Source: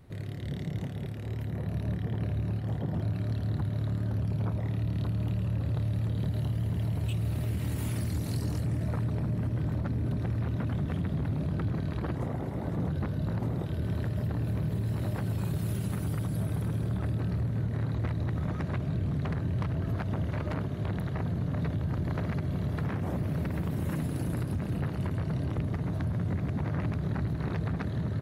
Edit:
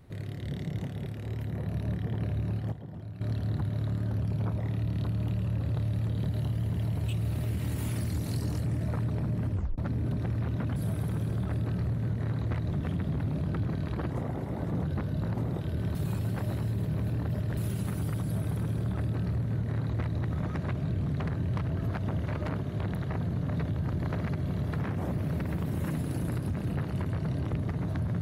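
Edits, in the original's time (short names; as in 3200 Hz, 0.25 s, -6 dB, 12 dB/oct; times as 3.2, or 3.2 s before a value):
2.72–3.21 gain -10.5 dB
9.51 tape stop 0.27 s
14–15.62 reverse
16.29–18.24 copy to 10.76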